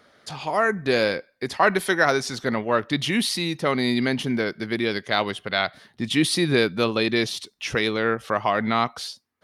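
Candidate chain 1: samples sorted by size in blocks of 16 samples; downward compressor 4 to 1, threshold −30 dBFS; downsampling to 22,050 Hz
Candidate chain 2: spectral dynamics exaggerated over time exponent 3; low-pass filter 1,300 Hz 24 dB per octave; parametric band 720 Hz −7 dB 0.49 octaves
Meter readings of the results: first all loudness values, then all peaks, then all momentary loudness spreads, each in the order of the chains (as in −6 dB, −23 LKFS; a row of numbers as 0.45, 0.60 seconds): −32.5, −33.0 LKFS; −14.5, −15.0 dBFS; 4, 18 LU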